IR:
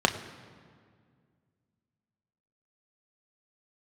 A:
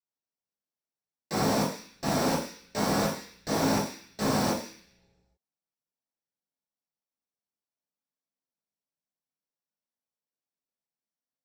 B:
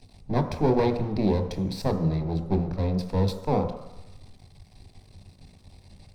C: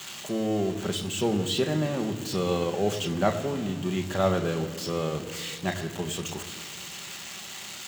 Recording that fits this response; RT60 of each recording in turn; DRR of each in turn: C; non-exponential decay, 1.0 s, 2.0 s; −7.0, 6.0, 4.5 decibels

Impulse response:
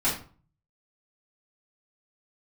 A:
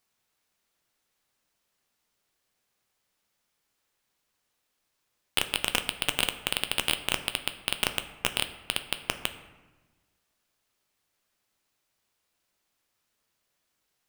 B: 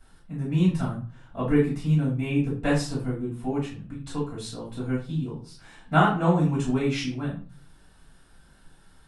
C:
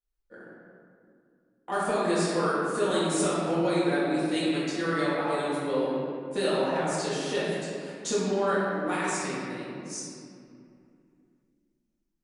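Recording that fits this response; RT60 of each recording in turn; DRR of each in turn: B; 1.2, 0.40, 2.5 seconds; 8.0, −9.5, −11.0 decibels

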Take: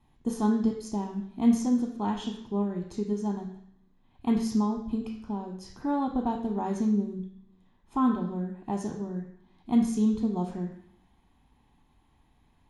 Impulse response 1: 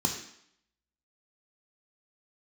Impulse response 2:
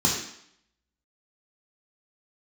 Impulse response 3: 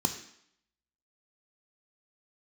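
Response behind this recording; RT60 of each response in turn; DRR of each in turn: 1; 0.70, 0.70, 0.70 seconds; 2.5, −3.0, 6.5 decibels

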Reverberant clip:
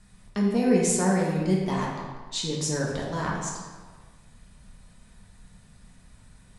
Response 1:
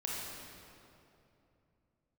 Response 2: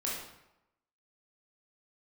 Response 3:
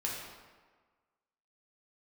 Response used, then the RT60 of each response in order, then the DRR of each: 3; 2.8, 0.90, 1.5 seconds; −5.0, −5.5, −4.0 decibels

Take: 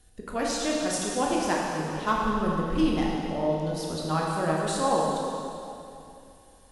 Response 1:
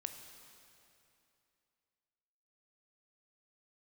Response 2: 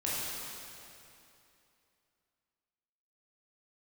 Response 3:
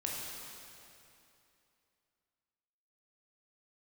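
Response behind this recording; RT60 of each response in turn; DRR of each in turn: 3; 2.8, 2.8, 2.8 seconds; 6.0, −8.0, −3.5 decibels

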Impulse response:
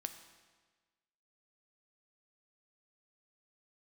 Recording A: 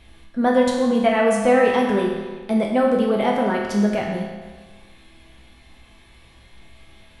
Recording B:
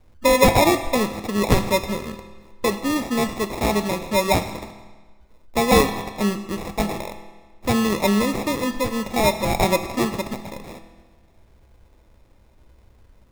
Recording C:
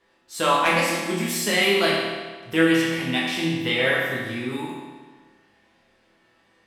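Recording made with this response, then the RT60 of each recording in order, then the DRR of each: B; 1.4, 1.4, 1.4 seconds; −2.0, 8.0, −6.5 decibels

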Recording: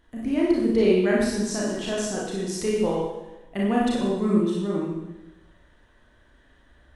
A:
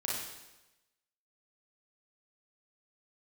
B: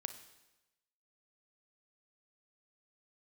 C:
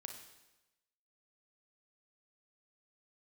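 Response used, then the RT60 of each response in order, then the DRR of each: A; 1.0, 1.0, 1.0 seconds; −5.0, 9.0, 4.0 decibels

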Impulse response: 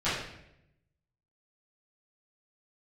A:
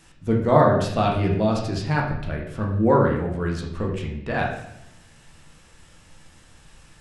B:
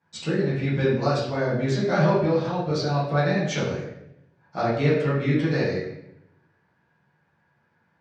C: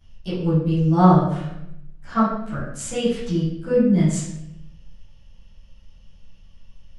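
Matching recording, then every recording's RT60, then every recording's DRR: C; 0.80, 0.80, 0.80 seconds; −2.0, −9.5, −15.0 decibels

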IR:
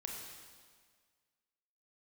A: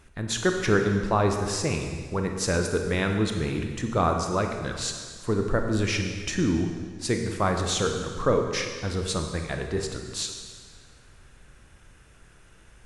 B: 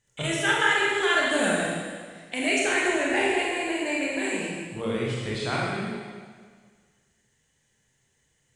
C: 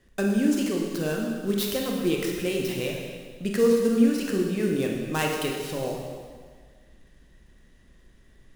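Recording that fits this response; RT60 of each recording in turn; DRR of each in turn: C; 1.7, 1.7, 1.7 seconds; 3.5, −5.5, −0.5 decibels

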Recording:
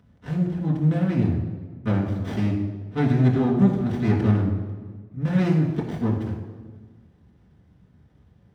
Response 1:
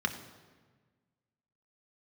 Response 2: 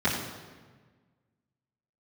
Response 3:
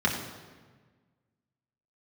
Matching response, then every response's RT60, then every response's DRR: 3; 1.4, 1.4, 1.4 seconds; 5.0, −12.5, −3.0 decibels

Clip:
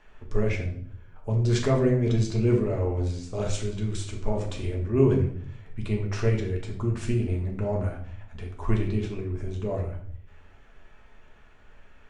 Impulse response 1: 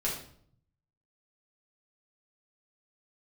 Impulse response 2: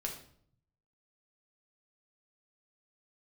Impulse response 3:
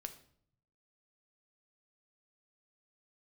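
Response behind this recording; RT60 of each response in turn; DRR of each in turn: 2; 0.60, 0.60, 0.60 seconds; −6.5, −0.5, 6.5 decibels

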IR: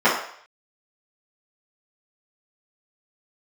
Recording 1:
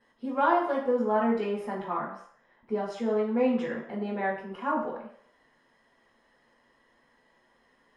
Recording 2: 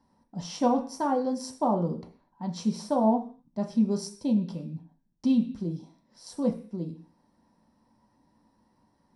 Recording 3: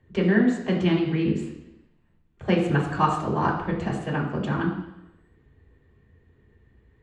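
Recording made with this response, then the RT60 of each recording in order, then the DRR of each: 1; 0.60, 0.45, 0.90 seconds; −13.5, 1.5, −4.5 decibels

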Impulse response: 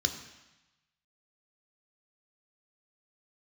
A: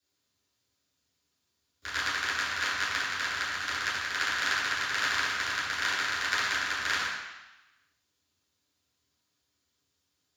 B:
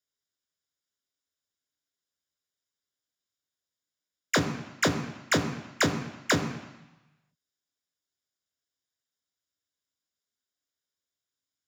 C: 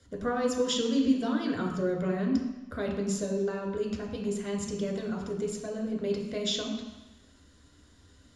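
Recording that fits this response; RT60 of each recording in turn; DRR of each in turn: B; 1.0, 1.0, 1.0 seconds; −10.5, 5.5, −1.0 decibels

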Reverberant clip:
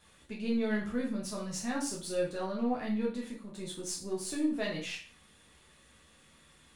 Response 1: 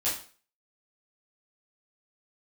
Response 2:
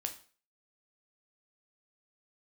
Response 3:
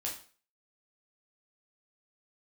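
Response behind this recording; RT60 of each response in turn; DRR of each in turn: 3; 0.40, 0.40, 0.40 seconds; −10.5, 5.0, −3.0 decibels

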